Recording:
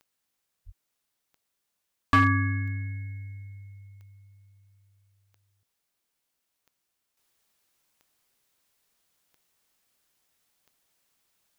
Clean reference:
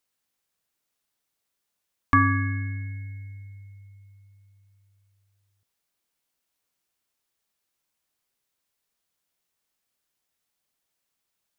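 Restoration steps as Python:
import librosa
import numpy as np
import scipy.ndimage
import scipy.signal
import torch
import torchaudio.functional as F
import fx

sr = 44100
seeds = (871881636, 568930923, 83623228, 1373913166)

y = fx.fix_declip(x, sr, threshold_db=-13.5)
y = fx.fix_declick_ar(y, sr, threshold=10.0)
y = fx.fix_deplosive(y, sr, at_s=(0.65,))
y = fx.gain(y, sr, db=fx.steps((0.0, 0.0), (7.17, -7.0)))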